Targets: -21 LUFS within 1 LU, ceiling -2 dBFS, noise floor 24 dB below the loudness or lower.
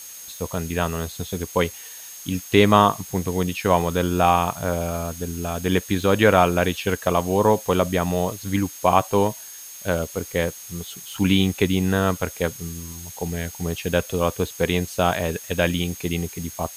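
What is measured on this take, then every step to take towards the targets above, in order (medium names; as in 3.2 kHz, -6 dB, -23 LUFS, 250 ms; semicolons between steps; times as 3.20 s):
steady tone 6.5 kHz; tone level -41 dBFS; noise floor -39 dBFS; noise floor target -47 dBFS; loudness -22.5 LUFS; peak level -1.5 dBFS; loudness target -21.0 LUFS
-> band-stop 6.5 kHz, Q 30; noise reduction 8 dB, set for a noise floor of -39 dBFS; trim +1.5 dB; peak limiter -2 dBFS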